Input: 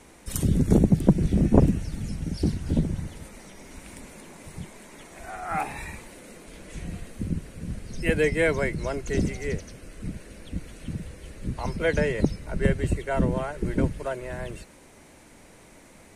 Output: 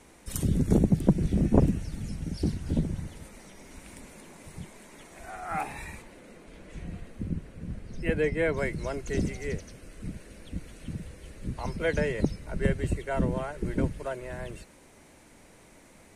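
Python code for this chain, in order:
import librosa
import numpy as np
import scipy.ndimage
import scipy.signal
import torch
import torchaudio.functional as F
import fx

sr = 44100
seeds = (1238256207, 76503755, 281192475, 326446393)

y = fx.high_shelf(x, sr, hz=fx.line((6.01, 5300.0), (8.56, 3300.0)), db=-11.0, at=(6.01, 8.56), fade=0.02)
y = F.gain(torch.from_numpy(y), -3.5).numpy()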